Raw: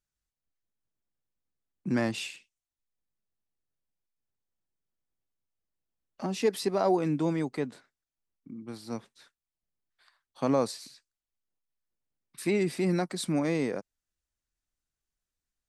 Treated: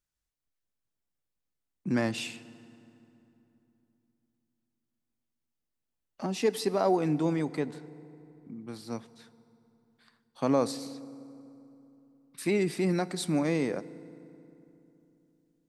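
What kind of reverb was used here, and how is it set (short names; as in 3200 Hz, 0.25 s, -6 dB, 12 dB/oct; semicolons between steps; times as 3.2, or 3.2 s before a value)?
FDN reverb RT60 3 s, low-frequency decay 1.3×, high-frequency decay 0.65×, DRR 16.5 dB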